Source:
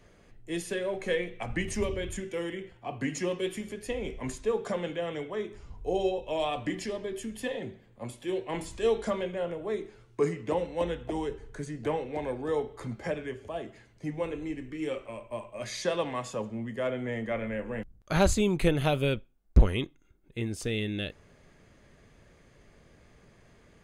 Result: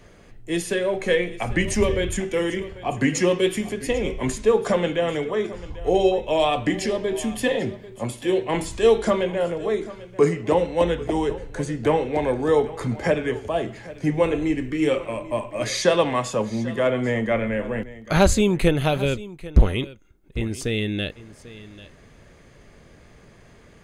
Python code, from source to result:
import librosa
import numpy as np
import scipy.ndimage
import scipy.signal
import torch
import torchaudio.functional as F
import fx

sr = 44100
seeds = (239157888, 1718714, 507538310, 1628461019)

p1 = fx.rider(x, sr, range_db=5, speed_s=2.0)
p2 = p1 + fx.echo_single(p1, sr, ms=792, db=-17.5, dry=0)
y = p2 * librosa.db_to_amplitude(8.5)